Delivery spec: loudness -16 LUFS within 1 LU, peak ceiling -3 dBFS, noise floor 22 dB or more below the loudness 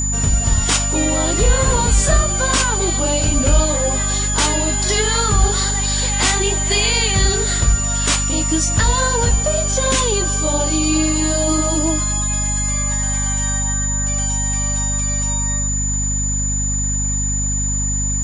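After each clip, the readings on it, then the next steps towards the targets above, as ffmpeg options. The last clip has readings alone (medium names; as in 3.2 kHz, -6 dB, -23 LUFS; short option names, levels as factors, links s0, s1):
hum 50 Hz; highest harmonic 250 Hz; hum level -19 dBFS; steady tone 7 kHz; tone level -20 dBFS; loudness -17.0 LUFS; peak level -2.5 dBFS; loudness target -16.0 LUFS
-> -af "bandreject=f=50:t=h:w=4,bandreject=f=100:t=h:w=4,bandreject=f=150:t=h:w=4,bandreject=f=200:t=h:w=4,bandreject=f=250:t=h:w=4"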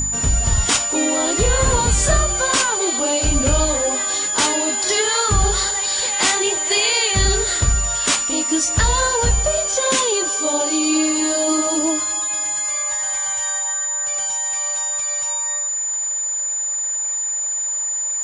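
hum not found; steady tone 7 kHz; tone level -20 dBFS
-> -af "bandreject=f=7000:w=30"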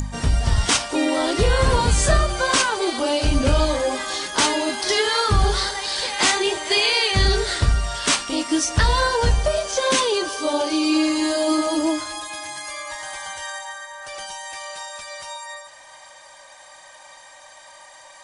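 steady tone not found; loudness -20.5 LUFS; peak level -5.0 dBFS; loudness target -16.0 LUFS
-> -af "volume=1.68,alimiter=limit=0.708:level=0:latency=1"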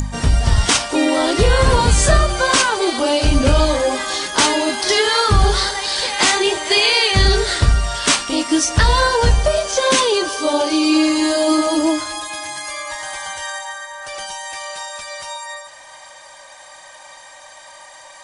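loudness -16.0 LUFS; peak level -3.0 dBFS; noise floor -41 dBFS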